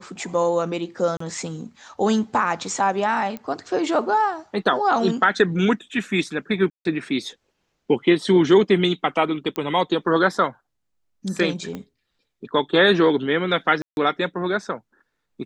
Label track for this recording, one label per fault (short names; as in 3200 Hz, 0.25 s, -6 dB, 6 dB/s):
1.170000	1.200000	gap 34 ms
3.370000	3.370000	pop -19 dBFS
6.700000	6.850000	gap 0.152 s
9.560000	9.560000	pop -12 dBFS
11.750000	11.750000	pop -19 dBFS
13.820000	13.970000	gap 0.151 s